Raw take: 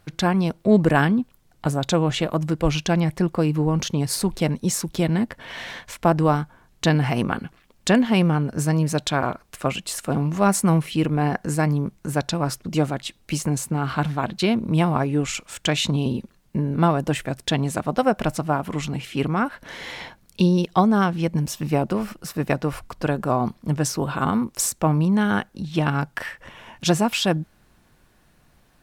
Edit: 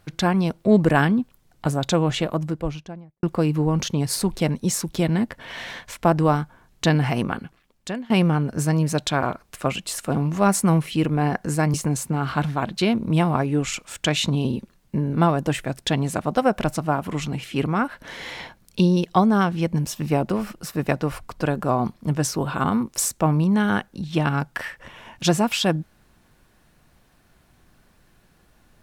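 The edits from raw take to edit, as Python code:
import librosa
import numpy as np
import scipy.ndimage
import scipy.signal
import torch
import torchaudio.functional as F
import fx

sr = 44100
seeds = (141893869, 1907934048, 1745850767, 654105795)

y = fx.studio_fade_out(x, sr, start_s=2.09, length_s=1.14)
y = fx.edit(y, sr, fx.fade_out_to(start_s=7.07, length_s=1.03, floor_db=-19.5),
    fx.cut(start_s=11.74, length_s=1.61), tone=tone)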